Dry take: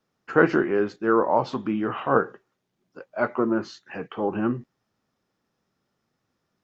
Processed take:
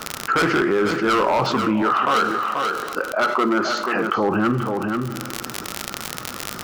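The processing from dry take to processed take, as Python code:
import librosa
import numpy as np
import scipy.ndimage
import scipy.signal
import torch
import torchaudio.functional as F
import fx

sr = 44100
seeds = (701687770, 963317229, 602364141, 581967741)

y = fx.peak_eq(x, sr, hz=1300.0, db=12.0, octaves=0.41)
y = np.clip(10.0 ** (17.5 / 20.0) * y, -1.0, 1.0) / 10.0 ** (17.5 / 20.0)
y = fx.highpass(y, sr, hz=220.0, slope=12, at=(1.82, 4.16))
y = fx.rev_double_slope(y, sr, seeds[0], early_s=0.96, late_s=2.8, knee_db=-18, drr_db=16.5)
y = fx.dmg_crackle(y, sr, seeds[1], per_s=56.0, level_db=-40.0)
y = y + 10.0 ** (-14.0 / 20.0) * np.pad(y, (int(485 * sr / 1000.0), 0))[:len(y)]
y = fx.env_flatten(y, sr, amount_pct=70)
y = y * librosa.db_to_amplitude(1.5)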